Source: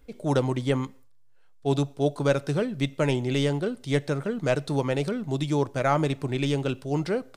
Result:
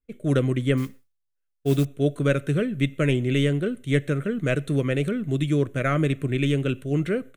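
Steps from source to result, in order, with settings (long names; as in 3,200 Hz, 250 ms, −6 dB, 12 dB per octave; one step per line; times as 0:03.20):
downward expander −37 dBFS
phaser with its sweep stopped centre 2,100 Hz, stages 4
0:00.77–0:01.85: noise that follows the level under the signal 23 dB
level +4.5 dB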